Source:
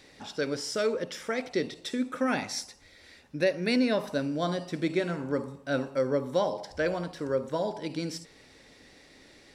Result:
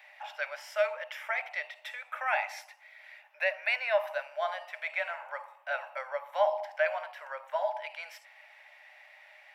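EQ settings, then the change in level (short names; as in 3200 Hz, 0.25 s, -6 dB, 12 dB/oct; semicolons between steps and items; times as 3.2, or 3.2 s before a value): rippled Chebyshev high-pass 590 Hz, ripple 6 dB; band shelf 6000 Hz -15.5 dB; +6.0 dB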